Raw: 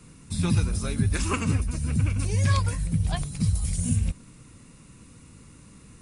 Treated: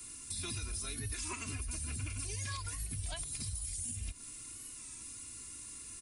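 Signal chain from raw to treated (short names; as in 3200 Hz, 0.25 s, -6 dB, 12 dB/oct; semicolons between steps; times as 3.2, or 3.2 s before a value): pre-emphasis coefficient 0.9; comb 2.9 ms, depth 74%; dynamic EQ 7900 Hz, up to -6 dB, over -47 dBFS, Q 0.81; compressor 5:1, threshold -44 dBFS, peak gain reduction 11 dB; limiter -38 dBFS, peak gain reduction 5 dB; record warp 33 1/3 rpm, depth 100 cents; gain +8.5 dB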